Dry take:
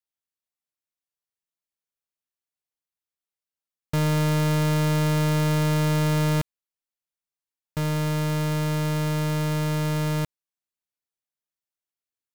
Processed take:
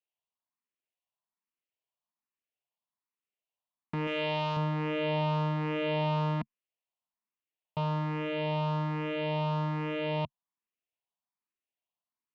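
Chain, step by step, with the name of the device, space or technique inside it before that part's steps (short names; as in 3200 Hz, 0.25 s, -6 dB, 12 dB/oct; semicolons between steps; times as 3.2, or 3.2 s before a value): barber-pole phaser into a guitar amplifier (endless phaser +1.2 Hz; soft clip -25.5 dBFS, distortion -13 dB; speaker cabinet 98–3400 Hz, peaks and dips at 140 Hz -4 dB, 220 Hz +5 dB, 680 Hz +6 dB, 1000 Hz +9 dB, 1500 Hz -6 dB, 2800 Hz +6 dB); 4.07–4.57 tilt +2 dB/oct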